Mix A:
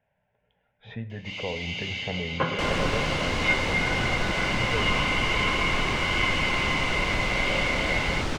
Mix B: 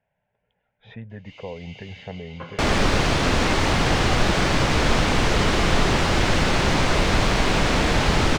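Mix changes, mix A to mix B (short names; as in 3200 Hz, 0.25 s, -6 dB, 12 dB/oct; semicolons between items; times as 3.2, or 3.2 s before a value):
first sound -11.0 dB; second sound +9.0 dB; reverb: off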